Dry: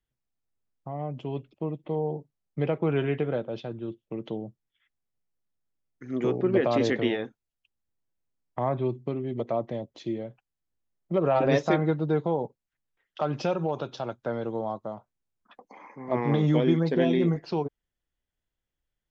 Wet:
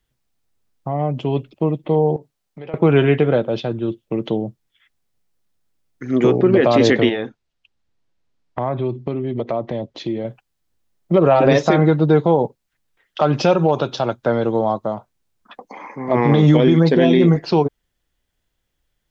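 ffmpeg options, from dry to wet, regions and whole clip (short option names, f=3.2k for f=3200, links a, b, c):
-filter_complex "[0:a]asettb=1/sr,asplit=3[a][b][c];[a]atrim=end=2.164[d];[b]atrim=start=2.16:end=2.74,asetpts=PTS-STARTPTS,afade=t=in:d=0.004:c=qsin,afade=t=out:st=0.576:d=0.004:c=qsin,acompressor=threshold=-42dB:ratio=4:attack=3.2:release=140:knee=1:detection=peak,lowshelf=f=260:g=-9,asplit=2[e][f];[f]adelay=16,volume=-13.5dB[g];[e][g]amix=inputs=2:normalize=0,atrim=end_sample=25578[h];[c]atrim=start=2.736[i];[d][h]acrossfade=d=0.004:c1=hsin:c2=qsin[j];[j][i]acrossfade=d=0.004:c1=qsin:c2=hsin,asettb=1/sr,asplit=3[k][l][m];[k]atrim=end=7.094[n];[l]atrim=start=7.09:end=10.25,asetpts=PTS-STARTPTS,afade=t=in:d=0.004:c=qsin,afade=t=out:st=3.156:d=0.004:c=qsin,lowpass=5.2k,acompressor=threshold=-35dB:ratio=2:attack=3.2:release=140:knee=1:detection=peak[o];[m]atrim=start=10.246[p];[n][o]acrossfade=d=0.004:c1=hsin:c2=qsin[q];[q][p]acrossfade=d=0.004:c1=qsin:c2=hsin,equalizer=f=4.1k:w=1.5:g=2,alimiter=level_in=16dB:limit=-1dB:release=50:level=0:latency=1,volume=-3.5dB"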